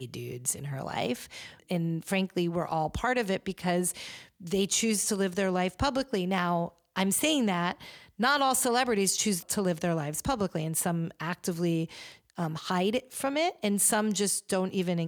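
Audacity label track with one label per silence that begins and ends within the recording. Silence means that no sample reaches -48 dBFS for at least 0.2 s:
6.690000	6.960000	silence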